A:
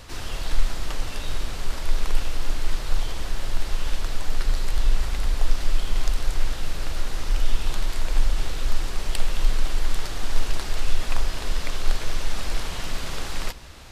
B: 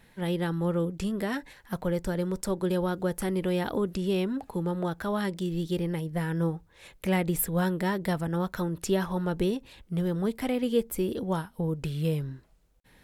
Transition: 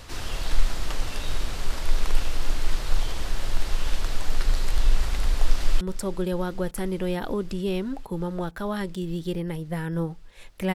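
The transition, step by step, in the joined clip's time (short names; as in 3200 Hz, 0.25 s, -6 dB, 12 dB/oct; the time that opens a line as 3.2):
A
5.42–5.81 echo throw 0.45 s, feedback 85%, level -16 dB
5.81 switch to B from 2.25 s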